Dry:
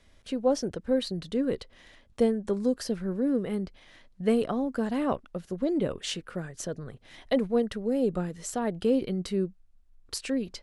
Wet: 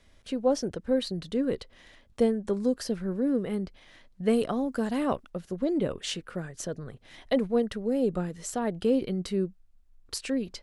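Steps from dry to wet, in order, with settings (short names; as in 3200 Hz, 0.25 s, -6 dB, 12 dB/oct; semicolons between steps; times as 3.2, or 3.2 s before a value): 4.33–5.3 high shelf 4300 Hz +6.5 dB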